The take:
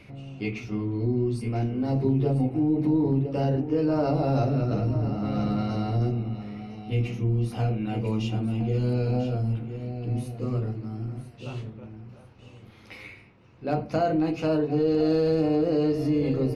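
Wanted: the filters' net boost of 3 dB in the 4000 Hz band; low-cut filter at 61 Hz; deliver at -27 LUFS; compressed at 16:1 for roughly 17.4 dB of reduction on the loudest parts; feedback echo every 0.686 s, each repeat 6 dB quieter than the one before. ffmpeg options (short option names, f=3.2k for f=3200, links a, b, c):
-af "highpass=61,equalizer=f=4k:t=o:g=4,acompressor=threshold=-37dB:ratio=16,aecho=1:1:686|1372|2058|2744|3430|4116:0.501|0.251|0.125|0.0626|0.0313|0.0157,volume=13.5dB"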